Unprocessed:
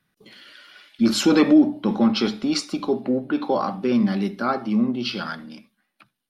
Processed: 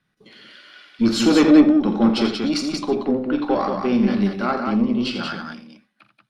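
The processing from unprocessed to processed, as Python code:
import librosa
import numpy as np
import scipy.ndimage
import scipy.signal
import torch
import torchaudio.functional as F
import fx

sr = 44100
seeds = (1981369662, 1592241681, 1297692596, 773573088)

y = scipy.signal.sosfilt(scipy.signal.bessel(2, 6800.0, 'lowpass', norm='mag', fs=sr, output='sos'), x)
y = fx.cheby_harmonics(y, sr, harmonics=(4, 8), levels_db=(-24, -38), full_scale_db=-6.5)
y = fx.echo_multitap(y, sr, ms=(44, 85, 183), db=(-12.0, -10.0, -4.5))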